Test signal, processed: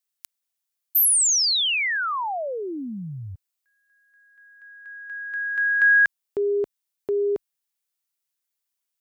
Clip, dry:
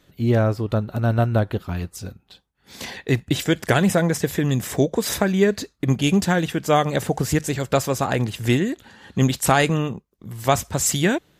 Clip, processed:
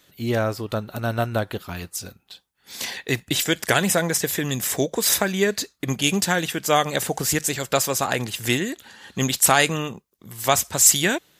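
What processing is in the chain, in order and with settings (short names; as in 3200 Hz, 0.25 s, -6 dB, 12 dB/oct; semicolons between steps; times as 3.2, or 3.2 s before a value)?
tilt +2.5 dB/oct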